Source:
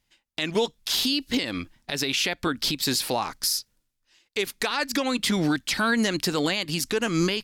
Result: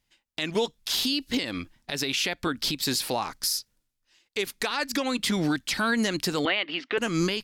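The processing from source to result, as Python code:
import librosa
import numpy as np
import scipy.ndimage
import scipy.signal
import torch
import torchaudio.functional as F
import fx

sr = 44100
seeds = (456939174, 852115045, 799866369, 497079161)

y = fx.cabinet(x, sr, low_hz=270.0, low_slope=24, high_hz=3200.0, hz=(680.0, 1300.0, 2000.0, 3000.0), db=(5, 6, 7, 6), at=(6.45, 6.98))
y = y * 10.0 ** (-2.0 / 20.0)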